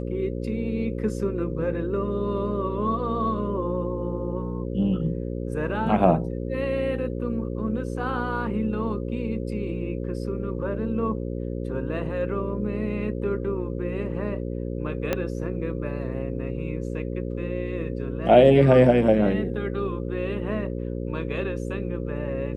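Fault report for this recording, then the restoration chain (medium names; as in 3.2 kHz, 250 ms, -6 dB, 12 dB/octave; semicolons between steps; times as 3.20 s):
buzz 60 Hz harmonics 9 -30 dBFS
15.13 s: pop -10 dBFS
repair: de-click; de-hum 60 Hz, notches 9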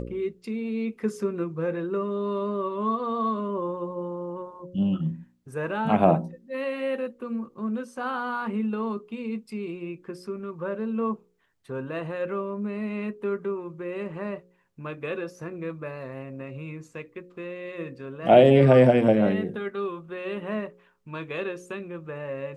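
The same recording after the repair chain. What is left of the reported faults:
15.13 s: pop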